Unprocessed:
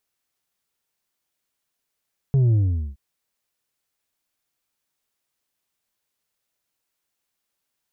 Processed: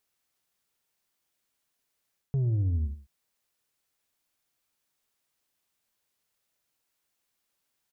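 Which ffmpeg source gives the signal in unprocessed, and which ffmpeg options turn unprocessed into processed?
-f lavfi -i "aevalsrc='0.178*clip((0.62-t)/0.43,0,1)*tanh(1.68*sin(2*PI*140*0.62/log(65/140)*(exp(log(65/140)*t/0.62)-1)))/tanh(1.68)':d=0.62:s=44100"
-af "areverse,acompressor=threshold=-26dB:ratio=6,areverse,aecho=1:1:111:0.168"

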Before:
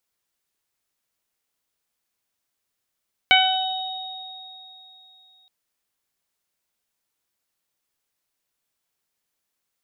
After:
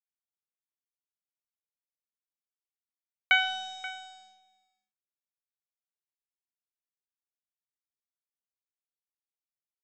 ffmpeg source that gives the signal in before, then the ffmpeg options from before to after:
-f lavfi -i "aevalsrc='0.133*pow(10,-3*t/2.45)*sin(2*PI*752*t)+0.126*pow(10,-3*t/0.64)*sin(2*PI*1504*t)+0.251*pow(10,-3*t/0.37)*sin(2*PI*2256*t)+0.188*pow(10,-3*t/1.07)*sin(2*PI*3008*t)+0.0841*pow(10,-3*t/3.86)*sin(2*PI*3760*t)':d=2.17:s=44100"
-filter_complex "[0:a]bandpass=f=1.6k:t=q:w=2:csg=0,aresample=16000,aeval=exprs='sgn(val(0))*max(abs(val(0))-0.00447,0)':c=same,aresample=44100,asplit=2[a][b];[b]adelay=530.6,volume=-15dB,highshelf=f=4k:g=-11.9[c];[a][c]amix=inputs=2:normalize=0"

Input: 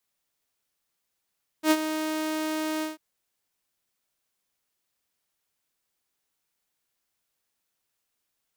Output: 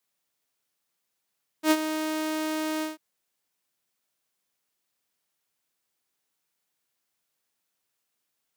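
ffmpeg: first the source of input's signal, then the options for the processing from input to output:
-f lavfi -i "aevalsrc='0.211*(2*mod(312*t,1)-1)':d=1.344:s=44100,afade=t=in:d=0.08,afade=t=out:st=0.08:d=0.05:silence=0.282,afade=t=out:st=1.19:d=0.154"
-af "highpass=100"

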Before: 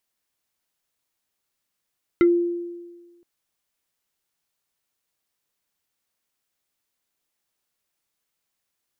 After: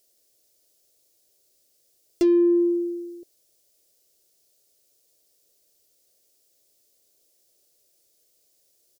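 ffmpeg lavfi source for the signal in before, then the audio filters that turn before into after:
-f lavfi -i "aevalsrc='0.282*pow(10,-3*t/1.4)*sin(2*PI*346*t+0.51*pow(10,-3*t/0.11)*sin(2*PI*4.94*346*t))':d=1.02:s=44100"
-filter_complex "[0:a]asplit=2[a][b];[b]acompressor=threshold=-27dB:ratio=6,volume=3dB[c];[a][c]amix=inputs=2:normalize=0,asoftclip=type=tanh:threshold=-23dB,firequalizer=gain_entry='entry(120,0);entry(190,-5);entry(370,9);entry(610,9);entry(900,-13);entry(4900,7)':delay=0.05:min_phase=1"

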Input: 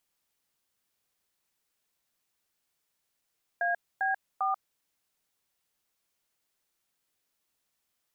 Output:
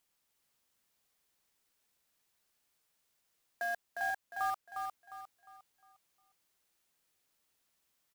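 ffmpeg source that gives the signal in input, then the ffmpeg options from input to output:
-f lavfi -i "aevalsrc='0.0398*clip(min(mod(t,0.398),0.138-mod(t,0.398))/0.002,0,1)*(eq(floor(t/0.398),0)*(sin(2*PI*697*mod(t,0.398))+sin(2*PI*1633*mod(t,0.398)))+eq(floor(t/0.398),1)*(sin(2*PI*770*mod(t,0.398))+sin(2*PI*1633*mod(t,0.398)))+eq(floor(t/0.398),2)*(sin(2*PI*770*mod(t,0.398))+sin(2*PI*1209*mod(t,0.398))))':d=1.194:s=44100"
-af "alimiter=level_in=4.5dB:limit=-24dB:level=0:latency=1:release=406,volume=-4.5dB,acrusher=bits=3:mode=log:mix=0:aa=0.000001,aecho=1:1:355|710|1065|1420|1775:0.596|0.214|0.0772|0.0278|0.01"

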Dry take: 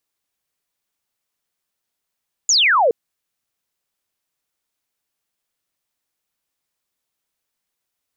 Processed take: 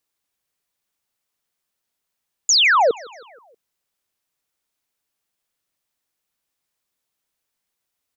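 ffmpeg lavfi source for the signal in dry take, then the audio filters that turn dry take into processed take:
-f lavfi -i "aevalsrc='0.266*clip(t/0.002,0,1)*clip((0.42-t)/0.002,0,1)*sin(2*PI*7200*0.42/log(430/7200)*(exp(log(430/7200)*t/0.42)-1))':d=0.42:s=44100"
-af "aecho=1:1:159|318|477|636:0.0708|0.0404|0.023|0.0131"

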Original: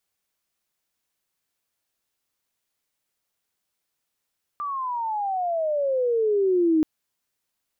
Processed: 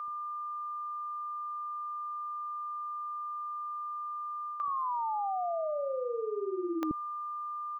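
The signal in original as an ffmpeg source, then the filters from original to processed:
-f lavfi -i "aevalsrc='pow(10,(-16+10.5*(t/2.23-1))/20)*sin(2*PI*1190*2.23/(-23.5*log(2)/12)*(exp(-23.5*log(2)/12*t/2.23)-1))':d=2.23:s=44100"
-filter_complex "[0:a]aeval=exprs='val(0)+0.0178*sin(2*PI*1200*n/s)':c=same,areverse,acompressor=threshold=-30dB:ratio=6,areverse,acrossover=split=410[a][b];[a]adelay=80[c];[c][b]amix=inputs=2:normalize=0"

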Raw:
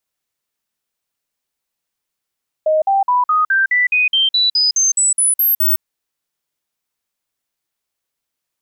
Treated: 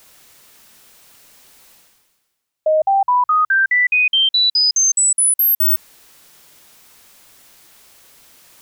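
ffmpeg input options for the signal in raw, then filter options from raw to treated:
-f lavfi -i "aevalsrc='0.282*clip(min(mod(t,0.21),0.16-mod(t,0.21))/0.005,0,1)*sin(2*PI*623*pow(2,floor(t/0.21)/3)*mod(t,0.21))':d=3.15:s=44100"
-af "bandreject=f=60:t=h:w=6,bandreject=f=120:t=h:w=6,areverse,acompressor=mode=upward:threshold=-23dB:ratio=2.5,areverse"

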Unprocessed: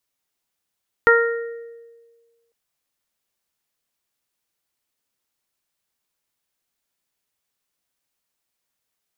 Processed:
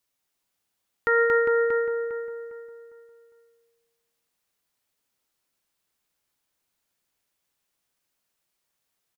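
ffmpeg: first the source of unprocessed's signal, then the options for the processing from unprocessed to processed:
-f lavfi -i "aevalsrc='0.237*pow(10,-3*t/1.54)*sin(2*PI*465*t)+0.0841*pow(10,-3*t/0.48)*sin(2*PI*930*t)+0.282*pow(10,-3*t/0.71)*sin(2*PI*1395*t)+0.2*pow(10,-3*t/0.87)*sin(2*PI*1860*t)':d=1.45:s=44100"
-filter_complex "[0:a]asplit=2[a][b];[b]aecho=0:1:230:0.376[c];[a][c]amix=inputs=2:normalize=0,alimiter=limit=-14dB:level=0:latency=1,asplit=2[d][e];[e]adelay=404,lowpass=f=2.5k:p=1,volume=-4dB,asplit=2[f][g];[g]adelay=404,lowpass=f=2.5k:p=1,volume=0.36,asplit=2[h][i];[i]adelay=404,lowpass=f=2.5k:p=1,volume=0.36,asplit=2[j][k];[k]adelay=404,lowpass=f=2.5k:p=1,volume=0.36,asplit=2[l][m];[m]adelay=404,lowpass=f=2.5k:p=1,volume=0.36[n];[f][h][j][l][n]amix=inputs=5:normalize=0[o];[d][o]amix=inputs=2:normalize=0"

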